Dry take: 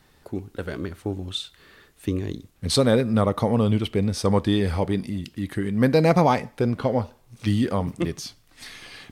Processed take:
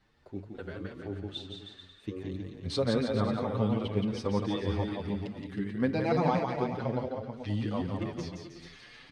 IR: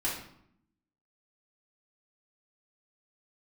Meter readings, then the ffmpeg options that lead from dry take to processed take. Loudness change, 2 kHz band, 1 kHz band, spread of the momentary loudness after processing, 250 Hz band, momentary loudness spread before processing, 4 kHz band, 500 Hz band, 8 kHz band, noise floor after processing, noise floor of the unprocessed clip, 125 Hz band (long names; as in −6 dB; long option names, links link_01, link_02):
−8.5 dB, −8.5 dB, −8.0 dB, 16 LU, −8.0 dB, 16 LU, −10.0 dB, −8.5 dB, below −15 dB, −56 dBFS, −58 dBFS, −9.0 dB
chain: -filter_complex "[0:a]lowpass=4700,asplit=2[link_01][link_02];[link_02]aecho=0:1:170|314.5|437.3|541.7|630.5:0.631|0.398|0.251|0.158|0.1[link_03];[link_01][link_03]amix=inputs=2:normalize=0,asplit=2[link_04][link_05];[link_05]adelay=7.1,afreqshift=2.5[link_06];[link_04][link_06]amix=inputs=2:normalize=1,volume=-7.5dB"